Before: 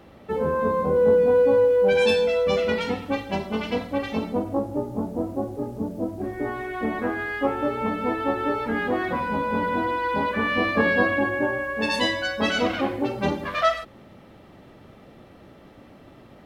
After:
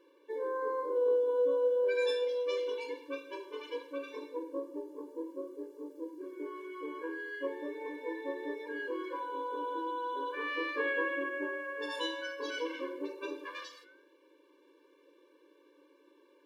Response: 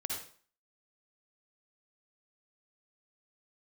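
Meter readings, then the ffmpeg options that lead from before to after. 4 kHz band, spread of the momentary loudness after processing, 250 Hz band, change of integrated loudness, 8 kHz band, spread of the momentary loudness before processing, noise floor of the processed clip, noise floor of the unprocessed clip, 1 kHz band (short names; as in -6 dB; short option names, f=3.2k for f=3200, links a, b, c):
-12.5 dB, 14 LU, -16.0 dB, -12.0 dB, n/a, 11 LU, -65 dBFS, -49 dBFS, -13.5 dB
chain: -filter_complex "[0:a]flanger=delay=9.6:depth=7.8:regen=-89:speed=0.35:shape=sinusoidal,asplit=2[a][b];[1:a]atrim=start_sample=2205,atrim=end_sample=3528[c];[b][c]afir=irnorm=-1:irlink=0,volume=-24dB[d];[a][d]amix=inputs=2:normalize=0,afftfilt=real='re*eq(mod(floor(b*sr/1024/300),2),1)':imag='im*eq(mod(floor(b*sr/1024/300),2),1)':win_size=1024:overlap=0.75,volume=-6.5dB"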